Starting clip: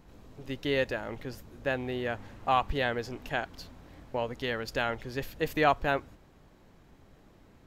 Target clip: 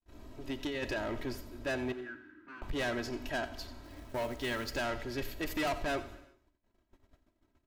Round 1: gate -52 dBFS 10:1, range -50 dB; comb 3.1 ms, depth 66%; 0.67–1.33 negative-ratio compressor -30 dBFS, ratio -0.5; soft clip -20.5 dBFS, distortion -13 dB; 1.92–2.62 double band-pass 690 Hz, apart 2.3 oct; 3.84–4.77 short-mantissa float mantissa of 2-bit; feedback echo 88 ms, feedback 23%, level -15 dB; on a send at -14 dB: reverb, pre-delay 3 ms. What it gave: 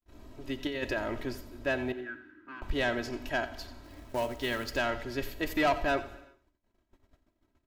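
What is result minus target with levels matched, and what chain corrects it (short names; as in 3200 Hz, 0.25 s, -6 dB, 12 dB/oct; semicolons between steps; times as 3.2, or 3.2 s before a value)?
soft clip: distortion -7 dB
gate -52 dBFS 10:1, range -50 dB; comb 3.1 ms, depth 66%; 0.67–1.33 negative-ratio compressor -30 dBFS, ratio -0.5; soft clip -30 dBFS, distortion -6 dB; 1.92–2.62 double band-pass 690 Hz, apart 2.3 oct; 3.84–4.77 short-mantissa float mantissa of 2-bit; feedback echo 88 ms, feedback 23%, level -15 dB; on a send at -14 dB: reverb, pre-delay 3 ms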